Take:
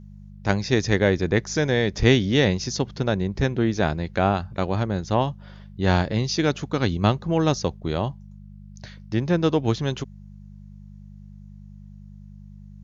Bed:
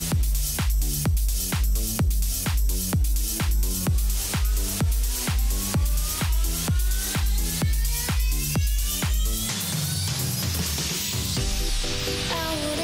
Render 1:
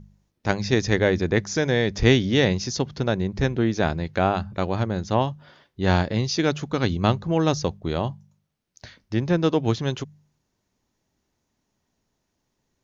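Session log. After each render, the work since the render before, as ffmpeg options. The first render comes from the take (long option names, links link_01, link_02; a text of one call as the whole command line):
ffmpeg -i in.wav -af "bandreject=frequency=50:width_type=h:width=4,bandreject=frequency=100:width_type=h:width=4,bandreject=frequency=150:width_type=h:width=4,bandreject=frequency=200:width_type=h:width=4" out.wav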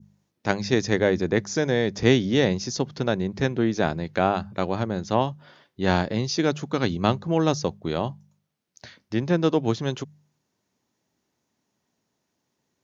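ffmpeg -i in.wav -af "highpass=130,adynamicequalizer=threshold=0.0141:dfrequency=2600:dqfactor=0.72:tfrequency=2600:tqfactor=0.72:attack=5:release=100:ratio=0.375:range=2.5:mode=cutabove:tftype=bell" out.wav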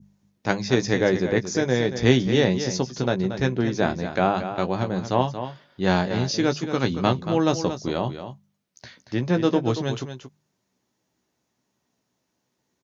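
ffmpeg -i in.wav -filter_complex "[0:a]asplit=2[link_01][link_02];[link_02]adelay=16,volume=-8.5dB[link_03];[link_01][link_03]amix=inputs=2:normalize=0,aecho=1:1:230:0.316" out.wav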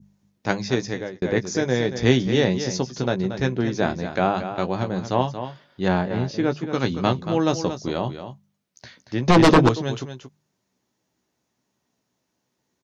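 ffmpeg -i in.wav -filter_complex "[0:a]asettb=1/sr,asplit=3[link_01][link_02][link_03];[link_01]atrim=end=5.884[link_04];[link_02]atrim=start=5.88:end=6.73,asetpts=PTS-STARTPTS,afade=type=in:duration=0.004:curve=qsin,afade=type=out:start_time=0.846:duration=0.004:curve=qsin,equalizer=frequency=6000:width_type=o:width=1.7:gain=-13[link_05];[link_03]atrim=start=6.726[link_06];[link_04][link_05]acrossfade=duration=0.004:curve1=hsin:curve2=qsin[link_07];[link_07][link_06]acrossfade=duration=0.004:curve1=qsin:curve2=hsin,asettb=1/sr,asplit=3[link_08][link_09][link_10];[link_08]atrim=end=9.284[link_11];[link_09]atrim=start=9.28:end=9.69,asetpts=PTS-STARTPTS,afade=type=in:duration=0.004:curve=qsin,afade=type=out:start_time=0.406:duration=0.004:curve=qsin,aeval=exprs='0.376*sin(PI/2*3.16*val(0)/0.376)':channel_layout=same[link_12];[link_10]atrim=start=9.686[link_13];[link_11][link_12]acrossfade=duration=0.004:curve1=hsin:curve2=qsin[link_14];[link_14][link_13]acrossfade=duration=0.004:curve1=qsin:curve2=hsin,asplit=2[link_15][link_16];[link_15]atrim=end=1.22,asetpts=PTS-STARTPTS,afade=type=out:start_time=0.62:duration=0.6[link_17];[link_16]atrim=start=1.22,asetpts=PTS-STARTPTS,afade=type=in:duration=0.004:curve=hsin[link_18];[link_17][link_18]concat=n=2:v=0:a=1" out.wav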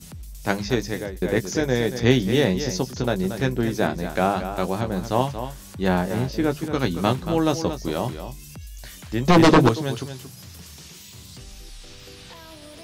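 ffmpeg -i in.wav -i bed.wav -filter_complex "[1:a]volume=-16dB[link_01];[0:a][link_01]amix=inputs=2:normalize=0" out.wav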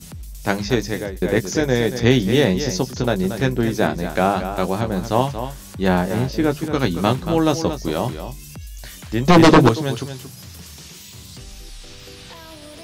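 ffmpeg -i in.wav -af "volume=3.5dB,alimiter=limit=-2dB:level=0:latency=1" out.wav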